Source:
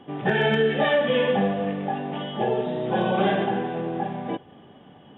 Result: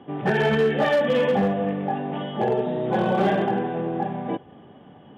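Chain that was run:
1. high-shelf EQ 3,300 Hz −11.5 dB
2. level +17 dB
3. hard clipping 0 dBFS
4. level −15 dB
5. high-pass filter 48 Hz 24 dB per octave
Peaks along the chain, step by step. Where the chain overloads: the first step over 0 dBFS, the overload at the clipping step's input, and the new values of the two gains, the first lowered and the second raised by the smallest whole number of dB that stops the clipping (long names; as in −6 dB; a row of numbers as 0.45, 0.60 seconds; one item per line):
−11.0, +6.0, 0.0, −15.0, −11.0 dBFS
step 2, 6.0 dB
step 2 +11 dB, step 4 −9 dB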